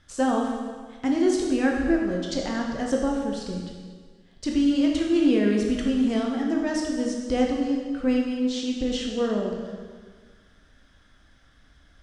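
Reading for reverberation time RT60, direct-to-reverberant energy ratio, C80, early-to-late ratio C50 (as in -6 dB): 1.6 s, -0.5 dB, 4.0 dB, 2.0 dB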